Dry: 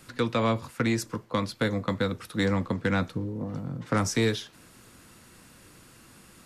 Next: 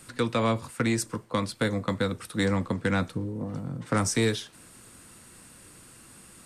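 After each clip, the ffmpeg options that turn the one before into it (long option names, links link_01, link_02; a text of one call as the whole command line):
ffmpeg -i in.wav -af "equalizer=frequency=8700:width_type=o:width=0.31:gain=11.5" out.wav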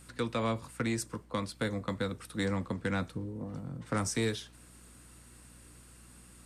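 ffmpeg -i in.wav -af "aeval=exprs='val(0)+0.00316*(sin(2*PI*60*n/s)+sin(2*PI*2*60*n/s)/2+sin(2*PI*3*60*n/s)/3+sin(2*PI*4*60*n/s)/4+sin(2*PI*5*60*n/s)/5)':channel_layout=same,volume=-6.5dB" out.wav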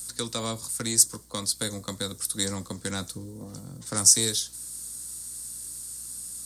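ffmpeg -i in.wav -af "aexciter=amount=8.8:drive=6.6:freq=3900,volume=-1dB" out.wav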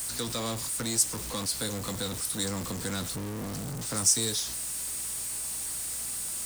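ffmpeg -i in.wav -af "aeval=exprs='val(0)+0.5*0.0631*sgn(val(0))':channel_layout=same,volume=-7dB" out.wav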